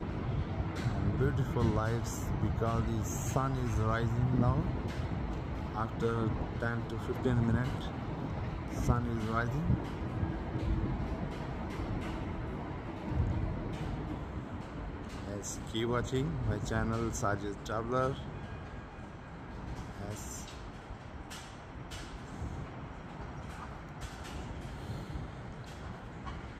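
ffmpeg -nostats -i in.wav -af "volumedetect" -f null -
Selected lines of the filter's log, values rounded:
mean_volume: -34.9 dB
max_volume: -15.0 dB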